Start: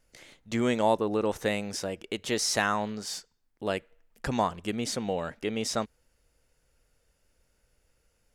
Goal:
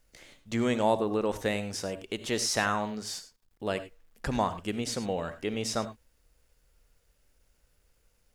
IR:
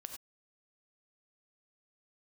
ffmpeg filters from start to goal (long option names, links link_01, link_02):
-filter_complex "[0:a]acrusher=bits=11:mix=0:aa=0.000001,asplit=2[link_01][link_02];[1:a]atrim=start_sample=2205,lowshelf=frequency=92:gain=10[link_03];[link_02][link_03]afir=irnorm=-1:irlink=0,volume=2dB[link_04];[link_01][link_04]amix=inputs=2:normalize=0,volume=-6dB"